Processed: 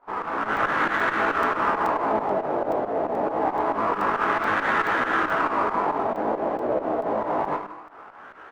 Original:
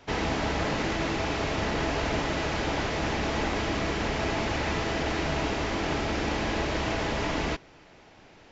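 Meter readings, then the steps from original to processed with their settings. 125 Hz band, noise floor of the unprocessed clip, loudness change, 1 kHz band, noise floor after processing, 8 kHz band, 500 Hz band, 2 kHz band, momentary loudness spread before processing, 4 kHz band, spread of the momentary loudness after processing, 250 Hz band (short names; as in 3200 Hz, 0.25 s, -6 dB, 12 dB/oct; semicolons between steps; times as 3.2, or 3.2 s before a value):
-10.5 dB, -54 dBFS, +4.5 dB, +9.5 dB, -44 dBFS, n/a, +5.0 dB, +5.0 dB, 1 LU, -8.5 dB, 4 LU, -0.5 dB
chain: echo 0.161 s -12 dB; Schroeder reverb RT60 0.61 s, combs from 29 ms, DRR 8.5 dB; flange 1.8 Hz, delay 7.9 ms, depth 5.2 ms, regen +69%; LFO low-pass sine 0.26 Hz 640–1600 Hz; HPF 270 Hz 12 dB/oct; dynamic EQ 880 Hz, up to -4 dB, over -45 dBFS, Q 0.9; chorus 0.59 Hz, delay 15.5 ms, depth 4.9 ms; AGC gain up to 7 dB; bell 1200 Hz +9.5 dB 1.2 oct; pump 137 bpm, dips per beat 2, -12 dB, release 0.109 s; crackling interface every 0.43 s, samples 128, zero, from 0.57; running maximum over 3 samples; gain +2.5 dB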